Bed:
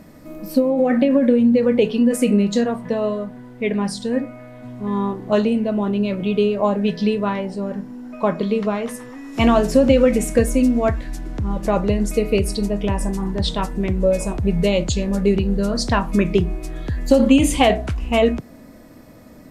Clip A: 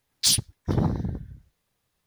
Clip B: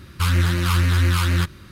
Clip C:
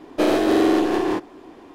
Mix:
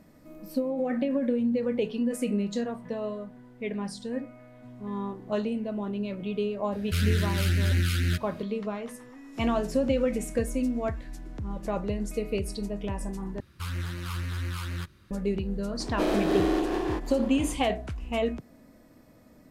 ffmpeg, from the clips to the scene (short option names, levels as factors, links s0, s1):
-filter_complex "[2:a]asplit=2[s0][s1];[0:a]volume=0.266[s2];[s0]asuperstop=centerf=820:order=8:qfactor=0.84[s3];[3:a]acompressor=mode=upward:threshold=0.0891:ratio=2.5:attack=3.2:release=140:knee=2.83:detection=peak[s4];[s2]asplit=2[s5][s6];[s5]atrim=end=13.404[s7];[s1]atrim=end=1.71,asetpts=PTS-STARTPTS,volume=0.188[s8];[s6]atrim=start=15.106[s9];[s3]atrim=end=1.71,asetpts=PTS-STARTPTS,volume=0.473,afade=t=in:d=0.004:c=hsin,afade=t=out:st=1.706:d=0.004:c=hsin,adelay=6720[s10];[s4]atrim=end=1.74,asetpts=PTS-STARTPTS,volume=0.398,afade=t=in:d=0.004:c=hsin,afade=t=out:st=1.736:d=0.004:c=hsin,adelay=15800[s11];[s7][s8]acrossfade=d=0.004:c1=hsin:c2=hsin[s12];[s12][s9]acrossfade=d=0.004:c1=hsin:c2=hsin[s13];[s13][s10][s11]amix=inputs=3:normalize=0"